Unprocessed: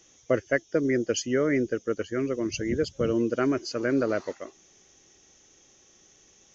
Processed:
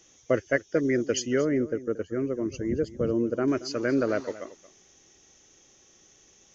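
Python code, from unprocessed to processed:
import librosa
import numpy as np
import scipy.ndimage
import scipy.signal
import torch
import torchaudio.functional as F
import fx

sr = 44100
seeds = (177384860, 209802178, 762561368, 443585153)

p1 = fx.peak_eq(x, sr, hz=3900.0, db=-13.0, octaves=2.6, at=(1.41, 3.48))
y = p1 + fx.echo_single(p1, sr, ms=228, db=-17.0, dry=0)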